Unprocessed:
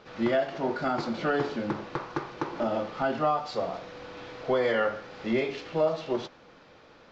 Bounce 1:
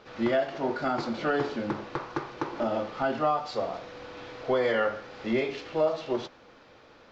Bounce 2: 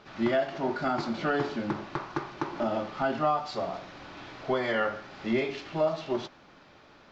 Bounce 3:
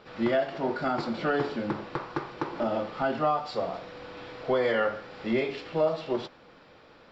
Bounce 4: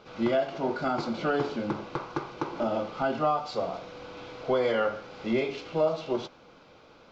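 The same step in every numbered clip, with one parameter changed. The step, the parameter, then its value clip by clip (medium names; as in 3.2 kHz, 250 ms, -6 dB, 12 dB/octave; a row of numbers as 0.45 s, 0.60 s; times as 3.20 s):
band-stop, frequency: 170 Hz, 490 Hz, 6.3 kHz, 1.8 kHz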